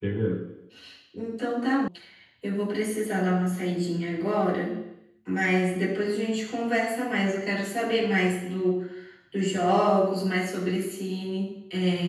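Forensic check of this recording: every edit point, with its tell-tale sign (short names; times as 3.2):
1.88 sound cut off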